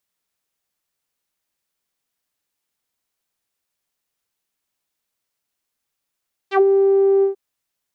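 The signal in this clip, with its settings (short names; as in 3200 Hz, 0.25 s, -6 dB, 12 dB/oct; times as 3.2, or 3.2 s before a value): synth note saw G4 12 dB/oct, low-pass 440 Hz, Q 2.8, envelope 3.5 oct, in 0.09 s, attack 68 ms, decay 0.06 s, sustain -5 dB, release 0.12 s, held 0.72 s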